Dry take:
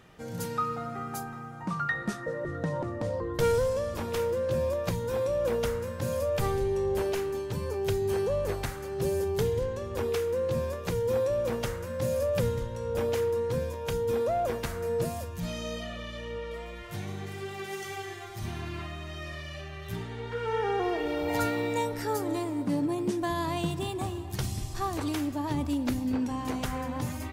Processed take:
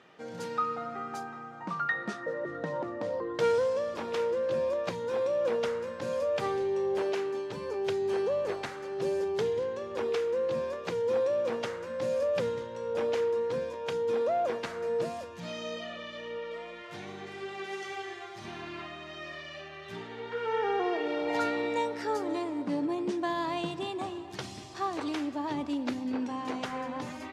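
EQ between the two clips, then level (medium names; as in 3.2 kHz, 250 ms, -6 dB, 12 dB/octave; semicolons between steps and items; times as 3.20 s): band-pass 270–4900 Hz; 0.0 dB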